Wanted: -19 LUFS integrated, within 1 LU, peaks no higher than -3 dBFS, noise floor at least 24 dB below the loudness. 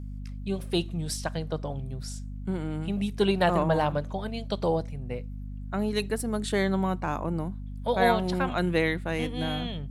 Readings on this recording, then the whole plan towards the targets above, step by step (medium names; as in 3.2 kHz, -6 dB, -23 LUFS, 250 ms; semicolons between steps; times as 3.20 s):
hum 50 Hz; highest harmonic 250 Hz; hum level -34 dBFS; loudness -29.0 LUFS; peak level -9.5 dBFS; loudness target -19.0 LUFS
-> de-hum 50 Hz, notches 5; trim +10 dB; peak limiter -3 dBFS